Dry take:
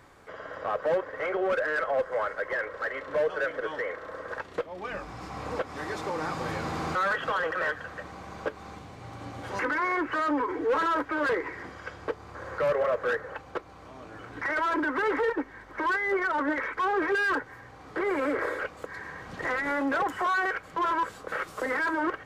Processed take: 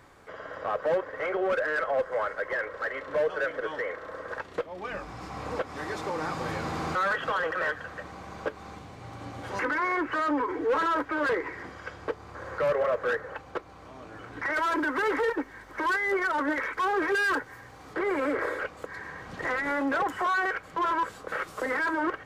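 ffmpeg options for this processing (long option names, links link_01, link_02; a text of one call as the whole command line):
ffmpeg -i in.wav -filter_complex "[0:a]asettb=1/sr,asplit=3[link_01][link_02][link_03];[link_01]atrim=end=14.544[link_04];[link_02]atrim=start=14.54:end=17.94,asetpts=PTS-STARTPTS,afade=type=in:duration=0.004:curve=qsin,afade=type=out:start_time=3.396:duration=0.004:curve=qsin,aemphasis=mode=production:type=cd[link_05];[link_03]atrim=start=17.936[link_06];[link_04][link_05]acrossfade=duration=0.004:curve1=hsin:curve2=qsin[link_07];[link_07][link_06]acrossfade=duration=0.004:curve1=qsin:curve2=hsin" out.wav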